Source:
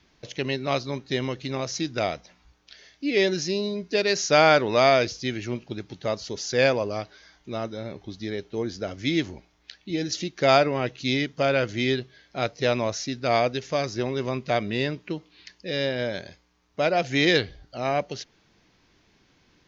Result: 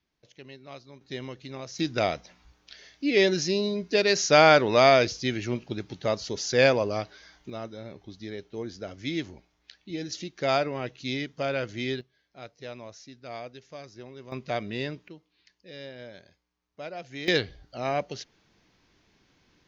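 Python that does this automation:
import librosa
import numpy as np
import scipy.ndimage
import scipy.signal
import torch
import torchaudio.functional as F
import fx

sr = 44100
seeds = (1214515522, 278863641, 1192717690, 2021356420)

y = fx.gain(x, sr, db=fx.steps((0.0, -18.5), (1.01, -9.5), (1.79, 0.5), (7.5, -6.5), (12.01, -17.0), (14.32, -6.0), (15.08, -15.5), (17.28, -3.0)))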